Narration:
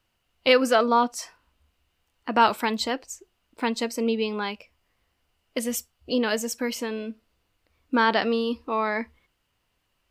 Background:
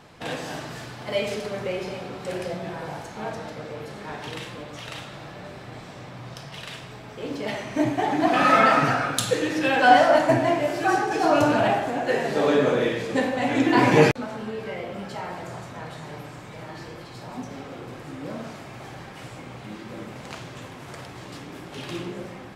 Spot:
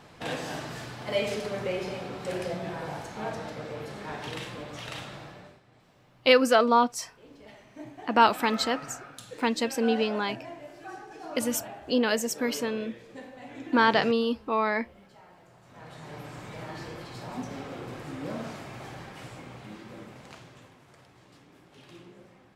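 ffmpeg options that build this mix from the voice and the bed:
ffmpeg -i stem1.wav -i stem2.wav -filter_complex "[0:a]adelay=5800,volume=-0.5dB[link_01];[1:a]volume=17.5dB,afade=type=out:start_time=5.1:duration=0.51:silence=0.11885,afade=type=in:start_time=15.61:duration=0.83:silence=0.105925,afade=type=out:start_time=18.51:duration=2.36:silence=0.158489[link_02];[link_01][link_02]amix=inputs=2:normalize=0" out.wav

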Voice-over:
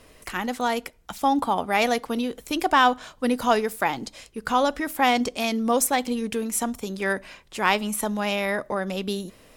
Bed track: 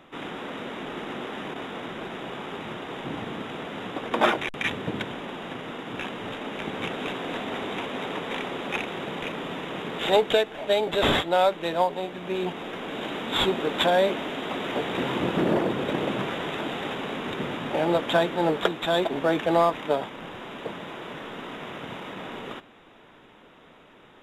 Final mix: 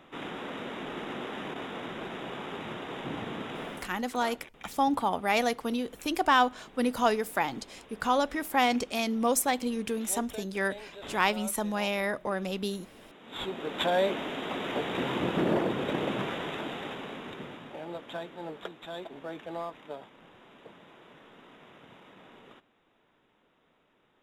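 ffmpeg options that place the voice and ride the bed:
ffmpeg -i stem1.wav -i stem2.wav -filter_complex "[0:a]adelay=3550,volume=-4.5dB[link_01];[1:a]volume=15dB,afade=type=out:start_time=3.69:duration=0.22:silence=0.11885,afade=type=in:start_time=13.19:duration=0.95:silence=0.125893,afade=type=out:start_time=16.25:duration=1.55:silence=0.223872[link_02];[link_01][link_02]amix=inputs=2:normalize=0" out.wav

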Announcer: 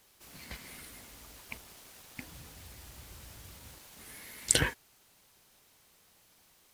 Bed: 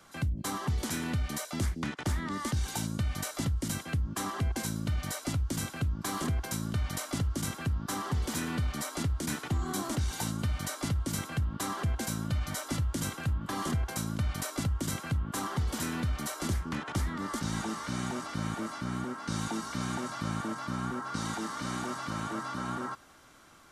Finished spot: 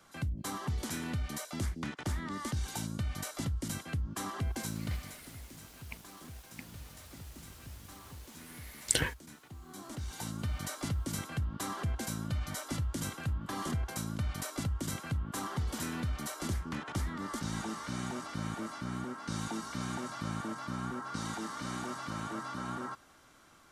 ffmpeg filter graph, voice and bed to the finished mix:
ffmpeg -i stem1.wav -i stem2.wav -filter_complex "[0:a]adelay=4400,volume=-3dB[link_01];[1:a]volume=11dB,afade=type=out:start_time=4.84:duration=0.33:silence=0.188365,afade=type=in:start_time=9.63:duration=0.94:silence=0.177828[link_02];[link_01][link_02]amix=inputs=2:normalize=0" out.wav

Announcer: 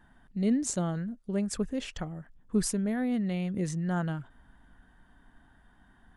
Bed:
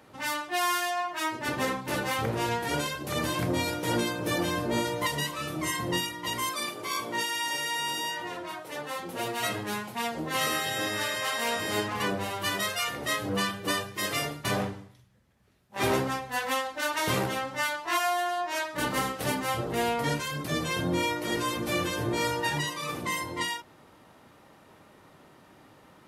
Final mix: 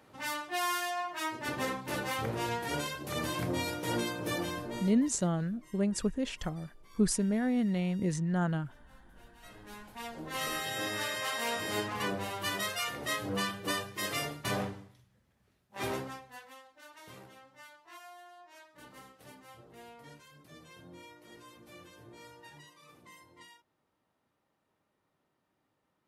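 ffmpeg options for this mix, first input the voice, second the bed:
ffmpeg -i stem1.wav -i stem2.wav -filter_complex "[0:a]adelay=4450,volume=0dB[link_01];[1:a]volume=19dB,afade=type=out:start_time=4.29:duration=0.81:silence=0.0668344,afade=type=in:start_time=9.4:duration=1.48:silence=0.0630957,afade=type=out:start_time=15.35:duration=1.14:silence=0.105925[link_02];[link_01][link_02]amix=inputs=2:normalize=0" out.wav

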